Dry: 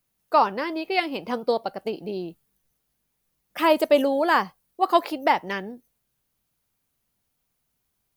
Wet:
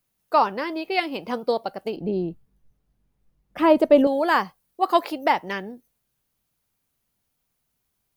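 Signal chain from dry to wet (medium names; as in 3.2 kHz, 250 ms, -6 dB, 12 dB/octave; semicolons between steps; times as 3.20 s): 1.96–4.07 s: tilt EQ -3.5 dB/octave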